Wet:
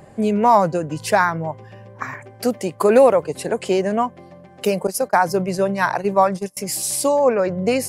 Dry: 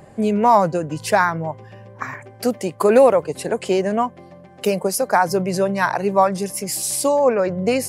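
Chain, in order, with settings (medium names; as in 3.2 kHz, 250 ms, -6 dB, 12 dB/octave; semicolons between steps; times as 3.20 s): 4.87–6.57 s: gate -22 dBFS, range -27 dB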